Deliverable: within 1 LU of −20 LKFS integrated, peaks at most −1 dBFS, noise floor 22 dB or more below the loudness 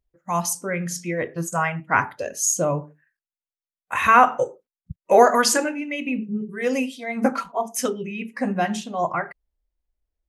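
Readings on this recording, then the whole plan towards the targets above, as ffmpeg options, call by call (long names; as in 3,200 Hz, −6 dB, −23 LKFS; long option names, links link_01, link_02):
integrated loudness −22.5 LKFS; sample peak −2.5 dBFS; target loudness −20.0 LKFS
→ -af "volume=2.5dB,alimiter=limit=-1dB:level=0:latency=1"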